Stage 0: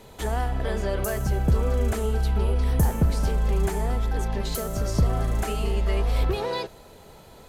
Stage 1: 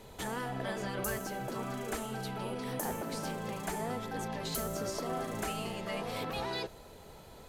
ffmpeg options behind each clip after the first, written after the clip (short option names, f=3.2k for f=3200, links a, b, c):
-af "afftfilt=real='re*lt(hypot(re,im),0.224)':imag='im*lt(hypot(re,im),0.224)':win_size=1024:overlap=0.75,volume=-4dB"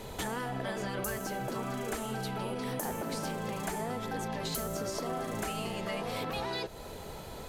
-af "acompressor=threshold=-43dB:ratio=3,volume=8.5dB"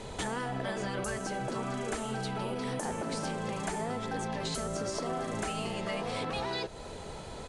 -af "aresample=22050,aresample=44100,volume=1dB"